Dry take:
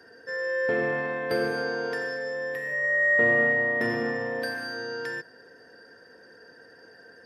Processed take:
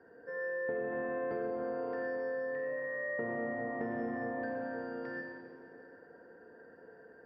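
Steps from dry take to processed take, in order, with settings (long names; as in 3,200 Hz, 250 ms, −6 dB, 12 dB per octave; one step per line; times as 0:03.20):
low-pass filter 1,100 Hz 12 dB per octave
parametric band 110 Hz −4 dB 0.31 octaves
on a send at −1 dB: convolution reverb RT60 2.3 s, pre-delay 39 ms
on the sum: downward compressor, threshold −29 dBFS, peak gain reduction 8.5 dB
level −4 dB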